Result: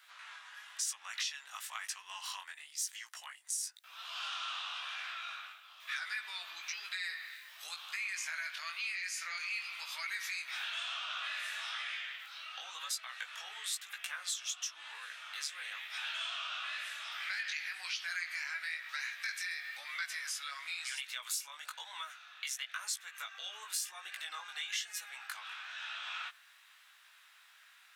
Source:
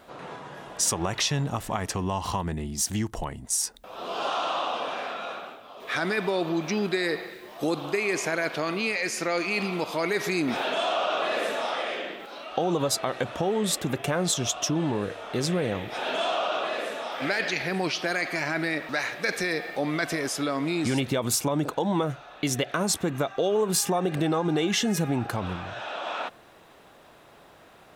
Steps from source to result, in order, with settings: HPF 1500 Hz 24 dB/oct; compressor 2.5:1, threshold -36 dBFS, peak gain reduction 10.5 dB; chorus 1 Hz, delay 15.5 ms, depth 6 ms; gain +1 dB

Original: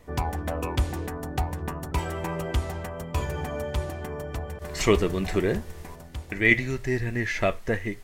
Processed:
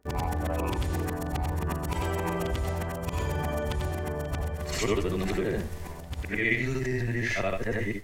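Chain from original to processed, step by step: short-time reversal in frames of 0.189 s; gate with hold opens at -37 dBFS; in parallel at +2 dB: negative-ratio compressor -33 dBFS, ratio -1; on the sum: crackle 11/s -35 dBFS; gain -4 dB

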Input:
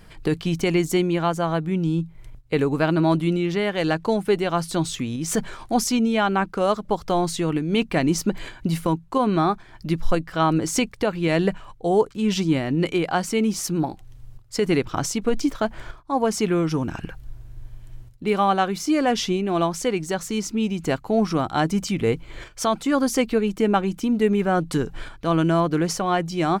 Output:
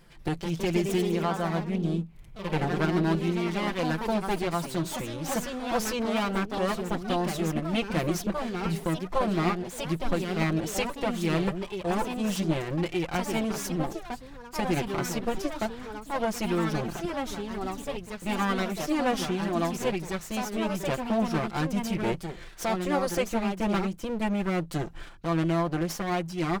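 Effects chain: minimum comb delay 5.8 ms; echoes that change speed 0.191 s, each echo +2 st, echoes 3, each echo -6 dB; gain -6.5 dB

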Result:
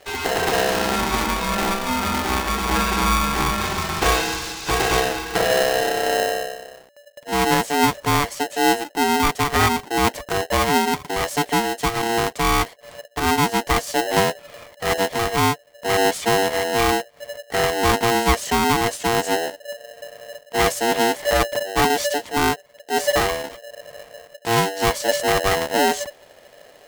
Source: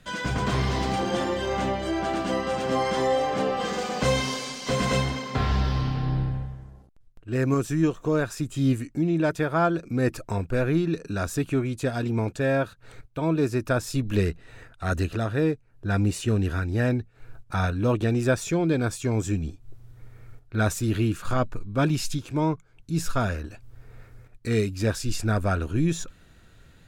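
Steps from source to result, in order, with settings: polarity switched at an audio rate 580 Hz; gain +4.5 dB

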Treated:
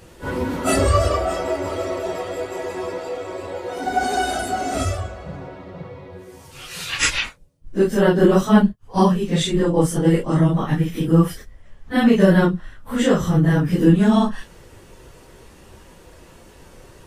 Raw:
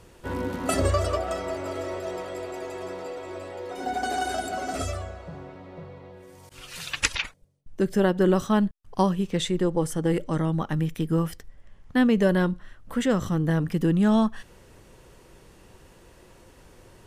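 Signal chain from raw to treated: phase scrambler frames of 0.1 s; gain +6.5 dB

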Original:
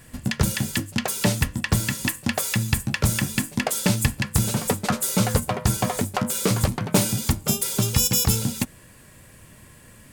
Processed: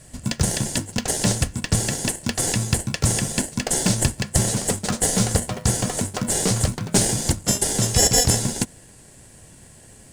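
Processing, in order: LPF 9300 Hz 24 dB/oct; tone controls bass +2 dB, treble +14 dB; in parallel at -4 dB: sample-and-hold 36×; on the sum: gain -6 dB

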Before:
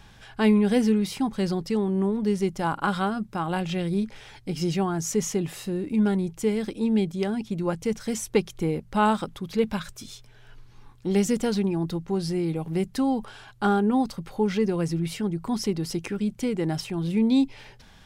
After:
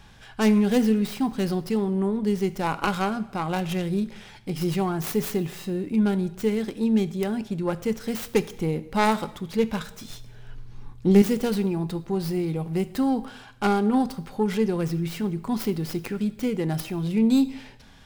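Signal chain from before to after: tracing distortion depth 0.32 ms; 10.1–11.22 low shelf 410 Hz +9.5 dB; two-slope reverb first 0.77 s, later 2.7 s, from -25 dB, DRR 13 dB

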